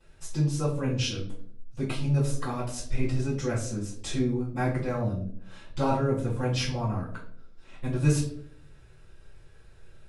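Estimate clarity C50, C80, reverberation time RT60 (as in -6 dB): 6.5 dB, 10.5 dB, 0.60 s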